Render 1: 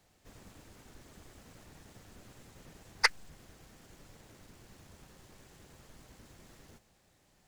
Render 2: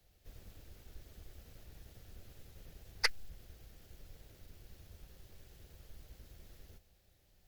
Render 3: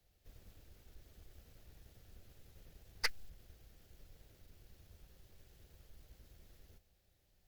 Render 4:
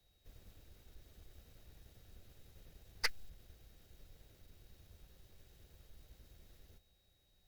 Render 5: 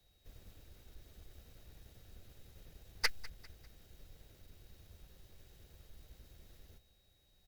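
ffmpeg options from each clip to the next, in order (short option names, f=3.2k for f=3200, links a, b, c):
-filter_complex "[0:a]equalizer=f=125:t=o:w=1:g=-5,equalizer=f=250:t=o:w=1:g=-8,equalizer=f=1k:t=o:w=1:g=-11,equalizer=f=2k:t=o:w=1:g=-4,equalizer=f=8k:t=o:w=1:g=-10,equalizer=f=16k:t=o:w=1:g=6,acrossover=split=110[a][b];[a]acontrast=89[c];[c][b]amix=inputs=2:normalize=0"
-af "aeval=exprs='0.188*(cos(1*acos(clip(val(0)/0.188,-1,1)))-cos(1*PI/2))+0.0168*(cos(8*acos(clip(val(0)/0.188,-1,1)))-cos(8*PI/2))':c=same,volume=-5dB"
-af "aeval=exprs='val(0)+0.000126*sin(2*PI*3800*n/s)':c=same"
-af "aecho=1:1:199|398|597:0.1|0.042|0.0176,volume=2.5dB"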